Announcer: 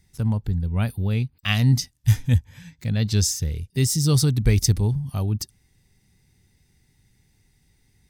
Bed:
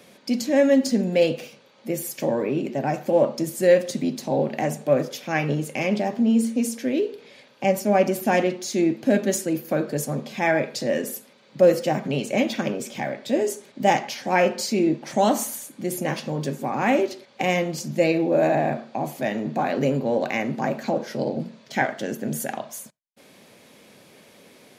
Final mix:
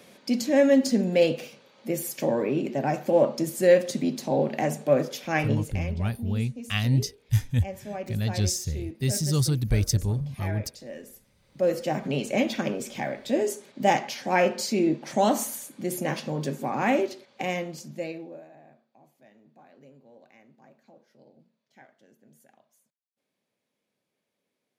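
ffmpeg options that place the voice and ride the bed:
ffmpeg -i stem1.wav -i stem2.wav -filter_complex "[0:a]adelay=5250,volume=-5dB[link_01];[1:a]volume=12.5dB,afade=type=out:start_time=5.39:duration=0.53:silence=0.177828,afade=type=in:start_time=11.35:duration=0.75:silence=0.199526,afade=type=out:start_time=16.82:duration=1.63:silence=0.0375837[link_02];[link_01][link_02]amix=inputs=2:normalize=0" out.wav

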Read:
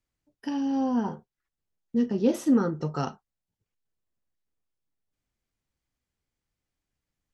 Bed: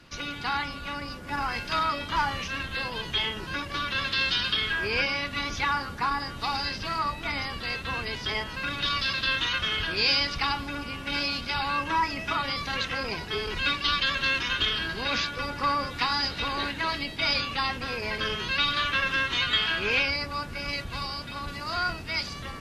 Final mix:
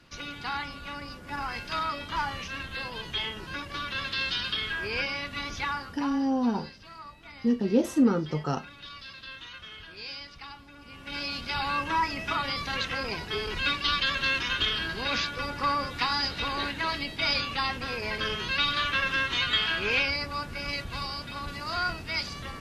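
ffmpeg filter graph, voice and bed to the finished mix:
ffmpeg -i stem1.wav -i stem2.wav -filter_complex "[0:a]adelay=5500,volume=0dB[link_01];[1:a]volume=11.5dB,afade=type=out:start_time=5.62:duration=0.72:silence=0.237137,afade=type=in:start_time=10.77:duration=0.87:silence=0.16788[link_02];[link_01][link_02]amix=inputs=2:normalize=0" out.wav

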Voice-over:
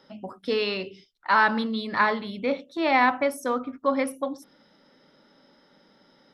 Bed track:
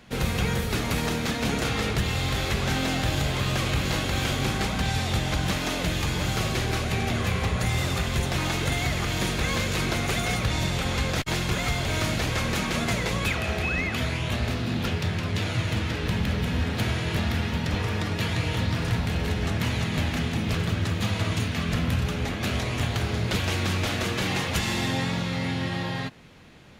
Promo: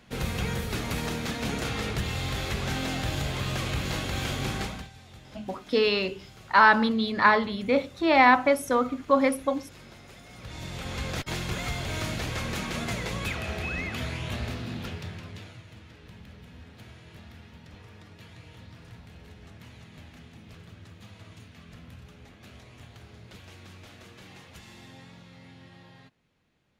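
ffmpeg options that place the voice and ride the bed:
ffmpeg -i stem1.wav -i stem2.wav -filter_complex "[0:a]adelay=5250,volume=2.5dB[link_01];[1:a]volume=13.5dB,afade=type=out:start_time=4.59:duration=0.3:silence=0.112202,afade=type=in:start_time=10.32:duration=0.84:silence=0.125893,afade=type=out:start_time=14.38:duration=1.24:silence=0.149624[link_02];[link_01][link_02]amix=inputs=2:normalize=0" out.wav

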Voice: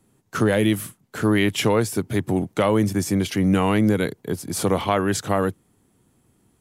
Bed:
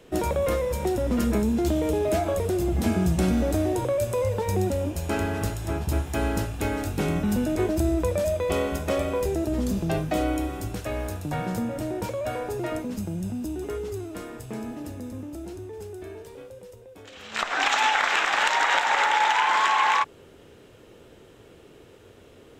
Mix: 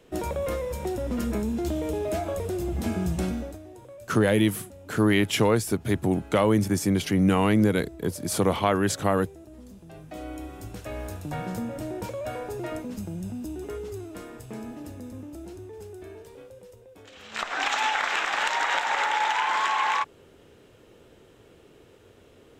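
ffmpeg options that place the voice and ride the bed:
ffmpeg -i stem1.wav -i stem2.wav -filter_complex "[0:a]adelay=3750,volume=-2dB[link_01];[1:a]volume=12.5dB,afade=type=out:start_time=3.21:duration=0.38:silence=0.158489,afade=type=in:start_time=9.92:duration=1.27:silence=0.141254[link_02];[link_01][link_02]amix=inputs=2:normalize=0" out.wav

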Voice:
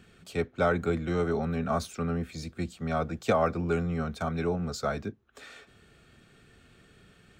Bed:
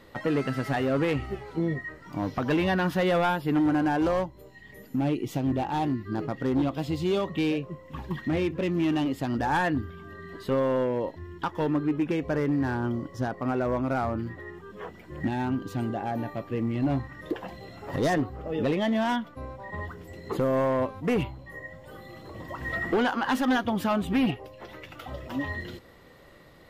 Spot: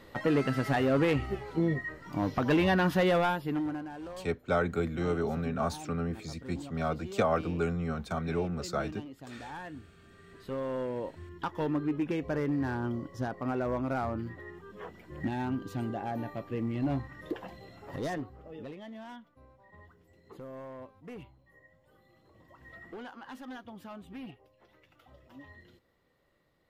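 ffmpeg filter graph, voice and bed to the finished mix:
ffmpeg -i stem1.wav -i stem2.wav -filter_complex "[0:a]adelay=3900,volume=-2.5dB[link_01];[1:a]volume=12.5dB,afade=type=out:start_time=2.98:duration=0.9:silence=0.141254,afade=type=in:start_time=10.03:duration=1.41:silence=0.223872,afade=type=out:start_time=17.25:duration=1.52:silence=0.177828[link_02];[link_01][link_02]amix=inputs=2:normalize=0" out.wav

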